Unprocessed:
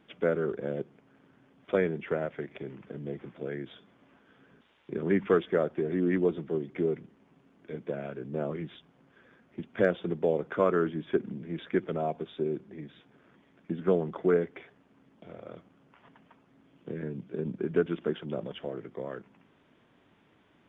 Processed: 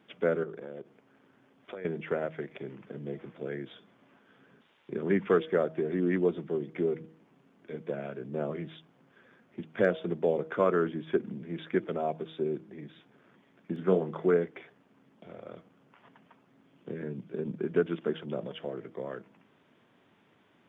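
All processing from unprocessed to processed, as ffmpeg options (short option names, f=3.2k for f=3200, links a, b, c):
-filter_complex "[0:a]asettb=1/sr,asplit=3[a][b][c];[a]atrim=end=0.434[d];[b]atrim=start=0.43:end=1.85,asetpts=PTS-STARTPTS,afade=t=in:d=0.004:c=qsin,afade=t=out:st=1.416:d=0.004:c=qsin,equalizer=f=160:t=o:w=0.64:g=-6,acompressor=threshold=-36dB:ratio=10:attack=3.2:release=140:knee=1:detection=peak[e];[c]atrim=start=1.846[f];[d][e]acrossfade=d=0.004:c1=hsin:c2=qsin[g];[g][f]acrossfade=d=0.004:c1=qsin:c2=hsin,asettb=1/sr,asplit=3[h][i][j];[h]atrim=end=13.734[k];[i]atrim=start=13.73:end=14.28,asetpts=PTS-STARTPTS,afade=t=in:d=0.004:c=qsin,afade=t=out:st=0.546:d=0.004:c=qsin,acompressor=mode=upward:threshold=-38dB:ratio=2.5:attack=3.2:release=140:knee=2.83:detection=peak,asplit=2[l][m];[m]adelay=32,volume=-9dB[n];[l][n]amix=inputs=2:normalize=0,atrim=end_sample=24255[o];[j]atrim=start=14.276[p];[k][o]acrossfade=d=0.004:c1=hsin:c2=qsin[q];[q][p]acrossfade=d=0.004:c1=qsin:c2=hsin,highpass=110,equalizer=f=290:w=5.6:g=-2.5,bandreject=f=159.3:t=h:w=4,bandreject=f=318.6:t=h:w=4,bandreject=f=477.9:t=h:w=4,bandreject=f=637.2:t=h:w=4"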